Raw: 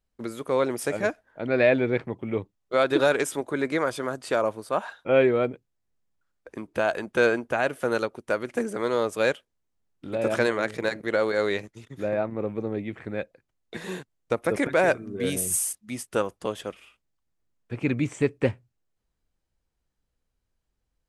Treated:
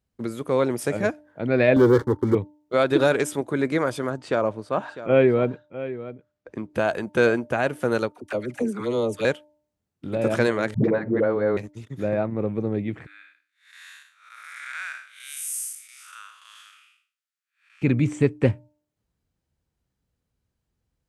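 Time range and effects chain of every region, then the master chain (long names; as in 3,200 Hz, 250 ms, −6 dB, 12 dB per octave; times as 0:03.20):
0:01.76–0:02.35: leveller curve on the samples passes 3 + phaser with its sweep stopped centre 670 Hz, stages 6
0:04.10–0:06.70: high-pass filter 40 Hz + high-frequency loss of the air 78 metres + single-tap delay 652 ms −14 dB
0:08.12–0:09.25: flanger swept by the level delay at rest 4.8 ms, full sweep at −22 dBFS + all-pass dispersion lows, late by 44 ms, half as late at 610 Hz
0:10.74–0:11.57: low-pass filter 1,300 Hz + all-pass dispersion highs, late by 102 ms, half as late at 320 Hz + multiband upward and downward compressor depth 100%
0:13.06–0:17.82: spectrum smeared in time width 208 ms + elliptic high-pass filter 1,300 Hz, stop band 80 dB
whole clip: high-pass filter 91 Hz; low-shelf EQ 210 Hz +12 dB; hum removal 299.6 Hz, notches 3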